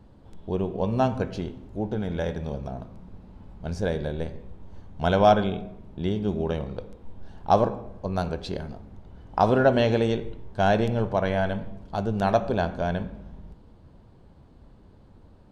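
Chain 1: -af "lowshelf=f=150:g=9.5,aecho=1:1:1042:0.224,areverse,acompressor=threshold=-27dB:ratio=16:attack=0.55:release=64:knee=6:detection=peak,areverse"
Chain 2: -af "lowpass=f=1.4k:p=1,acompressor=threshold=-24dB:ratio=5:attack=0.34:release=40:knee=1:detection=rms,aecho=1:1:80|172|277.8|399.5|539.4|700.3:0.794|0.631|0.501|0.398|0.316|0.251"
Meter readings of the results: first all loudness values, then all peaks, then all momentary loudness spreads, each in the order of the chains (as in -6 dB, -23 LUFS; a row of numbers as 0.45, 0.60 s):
-35.5, -29.5 LUFS; -23.0, -14.5 dBFS; 9, 11 LU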